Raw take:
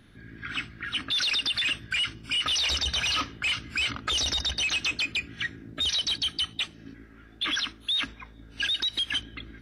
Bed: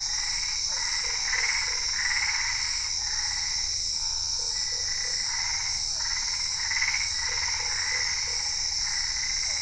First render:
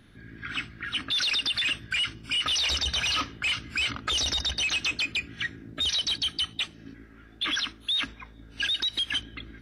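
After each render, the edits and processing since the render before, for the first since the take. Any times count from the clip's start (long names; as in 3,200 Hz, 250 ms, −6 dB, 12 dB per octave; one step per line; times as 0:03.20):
no processing that can be heard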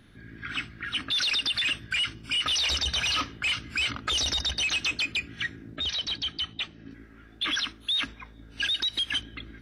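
0:05.76–0:06.91: high-frequency loss of the air 130 metres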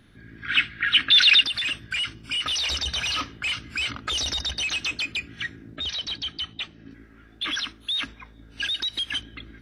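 0:00.48–0:01.44: flat-topped bell 2,400 Hz +12 dB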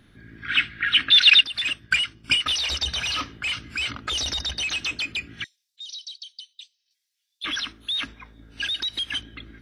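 0:01.10–0:02.86: transient designer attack +11 dB, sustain −7 dB
0:05.44–0:07.44: inverse Chebyshev high-pass filter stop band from 1,000 Hz, stop band 70 dB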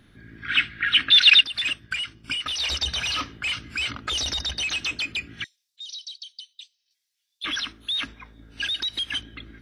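0:01.79–0:02.60: downward compressor 2.5 to 1, threshold −28 dBFS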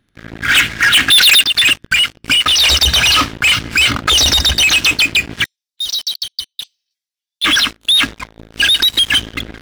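leveller curve on the samples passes 5
reversed playback
upward compression, threshold −34 dBFS
reversed playback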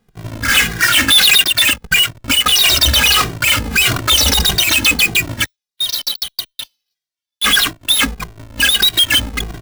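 each half-wave held at its own peak
barber-pole flanger 2 ms −1.6 Hz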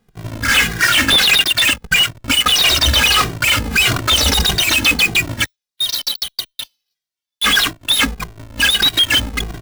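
slew-rate limiting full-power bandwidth 1,200 Hz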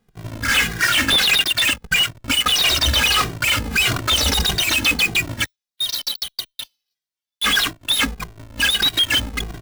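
level −4 dB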